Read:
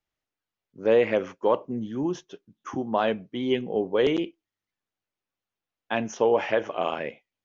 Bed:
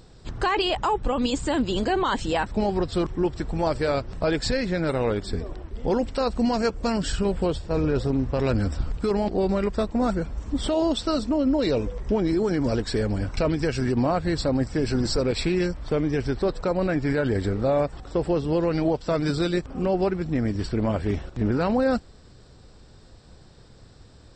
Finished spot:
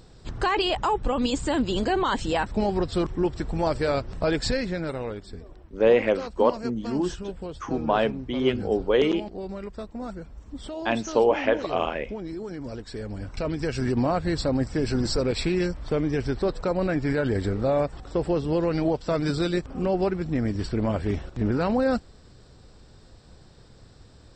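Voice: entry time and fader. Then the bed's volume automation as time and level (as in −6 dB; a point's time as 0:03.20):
4.95 s, +1.5 dB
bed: 0:04.51 −0.5 dB
0:05.30 −11.5 dB
0:12.85 −11.5 dB
0:13.87 −1 dB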